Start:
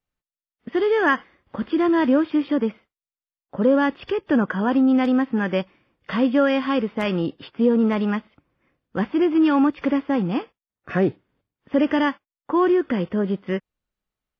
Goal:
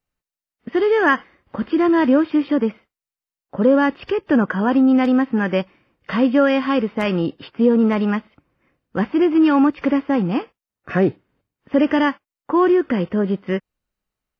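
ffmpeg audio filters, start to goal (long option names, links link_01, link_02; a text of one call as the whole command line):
ffmpeg -i in.wav -af "bandreject=frequency=3400:width=14,volume=3dB" out.wav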